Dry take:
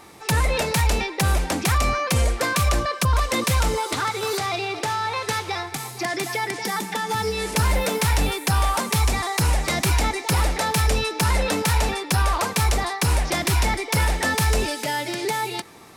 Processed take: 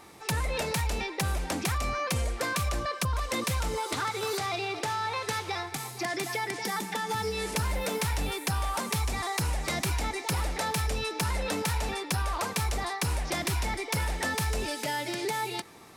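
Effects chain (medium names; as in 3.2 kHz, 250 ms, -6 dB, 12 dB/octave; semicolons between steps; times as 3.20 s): compression, threshold -21 dBFS, peak gain reduction 5.5 dB; trim -5 dB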